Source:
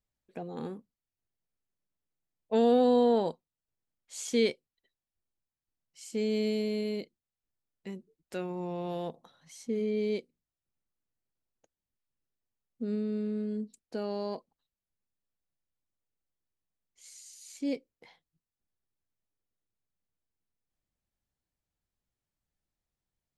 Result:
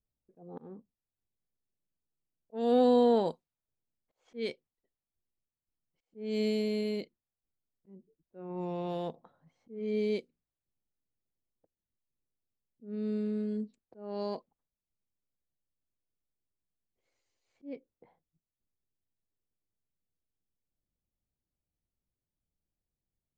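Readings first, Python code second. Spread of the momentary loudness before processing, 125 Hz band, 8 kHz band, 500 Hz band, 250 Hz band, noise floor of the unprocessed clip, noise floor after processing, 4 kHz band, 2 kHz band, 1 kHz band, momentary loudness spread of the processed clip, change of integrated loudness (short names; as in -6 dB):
23 LU, -1.5 dB, under -15 dB, -1.5 dB, -2.0 dB, under -85 dBFS, under -85 dBFS, -3.5 dB, -4.5 dB, -1.0 dB, 23 LU, -0.5 dB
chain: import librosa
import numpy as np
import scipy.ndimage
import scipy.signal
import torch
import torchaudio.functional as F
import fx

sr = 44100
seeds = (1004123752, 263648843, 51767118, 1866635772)

y = fx.auto_swell(x, sr, attack_ms=275.0)
y = fx.env_lowpass(y, sr, base_hz=560.0, full_db=-29.0)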